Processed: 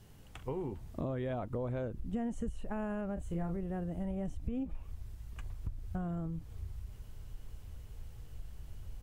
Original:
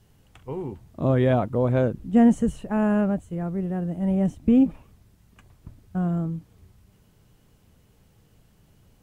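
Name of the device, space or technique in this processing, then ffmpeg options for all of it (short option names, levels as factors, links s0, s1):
serial compression, leveller first: -filter_complex "[0:a]asubboost=boost=9.5:cutoff=62,acompressor=threshold=0.0447:ratio=2,acompressor=threshold=0.0141:ratio=4,asplit=3[s0][s1][s2];[s0]afade=t=out:st=3.16:d=0.02[s3];[s1]asplit=2[s4][s5];[s5]adelay=30,volume=0.562[s6];[s4][s6]amix=inputs=2:normalize=0,afade=t=in:st=3.16:d=0.02,afade=t=out:st=3.56:d=0.02[s7];[s2]afade=t=in:st=3.56:d=0.02[s8];[s3][s7][s8]amix=inputs=3:normalize=0,volume=1.19"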